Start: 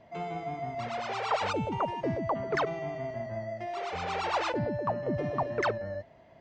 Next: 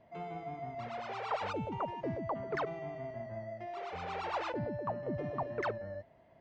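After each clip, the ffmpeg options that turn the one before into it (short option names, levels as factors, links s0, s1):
-af "lowpass=f=3000:p=1,volume=0.501"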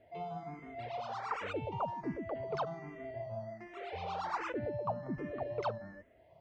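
-filter_complex "[0:a]asplit=2[s0][s1];[s1]afreqshift=1.3[s2];[s0][s2]amix=inputs=2:normalize=1,volume=1.26"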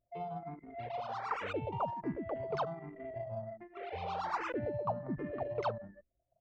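-af "anlmdn=0.0398,volume=1.12"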